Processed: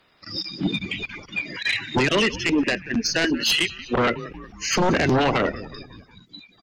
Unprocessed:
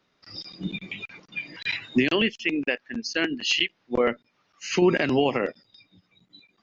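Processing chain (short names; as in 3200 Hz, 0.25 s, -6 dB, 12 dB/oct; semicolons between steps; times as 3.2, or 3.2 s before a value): bin magnitudes rounded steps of 30 dB; 4.87–5.35 high shelf 3600 Hz -4 dB; in parallel at -2.5 dB: limiter -16.5 dBFS, peak gain reduction 7 dB; on the sum: dynamic EQ 2700 Hz, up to -4 dB, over -36 dBFS, Q 1.9; on a send: frequency-shifting echo 0.183 s, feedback 55%, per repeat -96 Hz, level -19.5 dB; on the sum: sine folder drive 9 dB, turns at -7 dBFS; gain -8 dB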